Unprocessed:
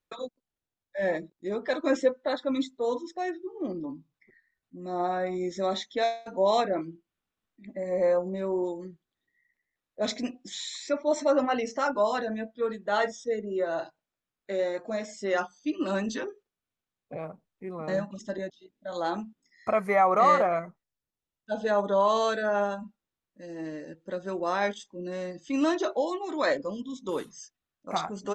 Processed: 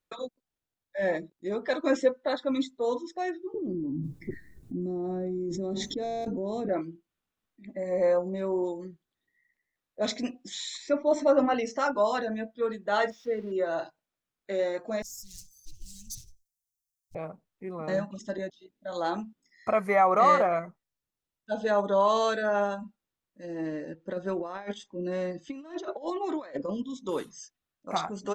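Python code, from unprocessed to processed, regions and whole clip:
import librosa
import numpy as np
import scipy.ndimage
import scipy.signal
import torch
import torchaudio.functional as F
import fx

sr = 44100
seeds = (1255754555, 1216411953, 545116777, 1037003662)

y = fx.chain(x, sr, fx.curve_eq(hz=(150.0, 220.0, 330.0, 640.0, 1500.0, 3100.0, 7400.0), db=(0, -6, -2, -21, -29, -29, -20)),
    fx.env_flatten(amount_pct=100), at=(3.54, 6.69))
y = fx.chain(y, sr, fx.tilt_eq(slope=-2.0),
    fx.hum_notches(base_hz=60, count=7), at=(10.77, 11.54))
y = fx.chain(y, sr, fx.crossing_spikes(level_db=-34.0),
    fx.air_absorb(metres=300.0), at=(13.1, 13.52))
y = fx.chain(y, sr, fx.lower_of_two(delay_ms=5.7),
    fx.ellip_bandstop(low_hz=110.0, high_hz=5700.0, order=3, stop_db=80),
    fx.high_shelf(hz=4200.0, db=9.0), at=(15.02, 17.15))
y = fx.chain(y, sr, fx.over_compress(threshold_db=-32.0, ratio=-0.5),
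    fx.high_shelf(hz=4000.0, db=-10.0), at=(23.44, 26.84))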